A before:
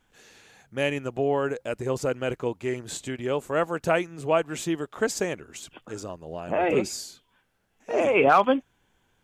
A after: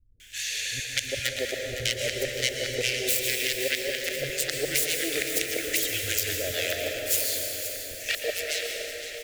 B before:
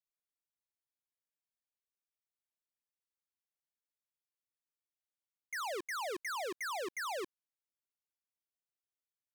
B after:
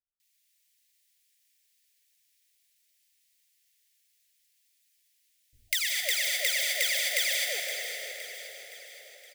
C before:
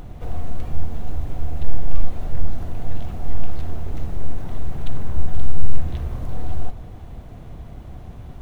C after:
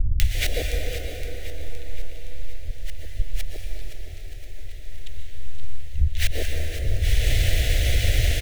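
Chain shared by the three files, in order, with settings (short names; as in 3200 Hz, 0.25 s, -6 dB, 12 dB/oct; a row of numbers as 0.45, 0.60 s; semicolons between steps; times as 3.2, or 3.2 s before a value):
self-modulated delay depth 0.74 ms; flipped gate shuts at -17 dBFS, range -33 dB; EQ curve 100 Hz 0 dB, 170 Hz -3 dB, 350 Hz -10 dB, 590 Hz +1 dB, 960 Hz -14 dB, 1900 Hz +14 dB; three bands offset in time lows, highs, mids 0.2/0.35 s, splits 220/790 Hz; compressor 10:1, threshold -34 dBFS; fixed phaser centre 430 Hz, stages 4; on a send: feedback echo 0.517 s, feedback 53%, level -11.5 dB; on the sum: plate-style reverb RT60 4.6 s, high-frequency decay 0.55×, pre-delay 0.105 s, DRR 1 dB; match loudness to -27 LUFS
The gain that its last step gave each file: +11.5, +9.5, +20.0 dB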